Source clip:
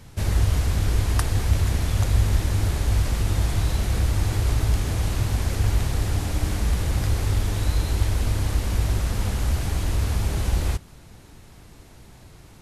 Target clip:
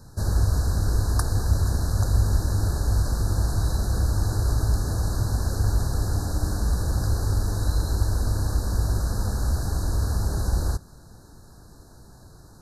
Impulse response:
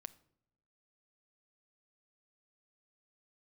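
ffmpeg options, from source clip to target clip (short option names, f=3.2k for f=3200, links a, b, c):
-af "asuperstop=centerf=2600:order=20:qfactor=1.2,volume=-1dB"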